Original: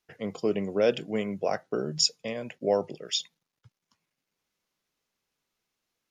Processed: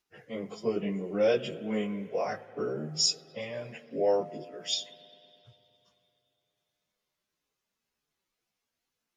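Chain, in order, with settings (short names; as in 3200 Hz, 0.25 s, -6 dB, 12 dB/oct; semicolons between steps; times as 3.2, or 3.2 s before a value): spring tank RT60 2 s, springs 38 ms, chirp 50 ms, DRR 14 dB; plain phase-vocoder stretch 1.5×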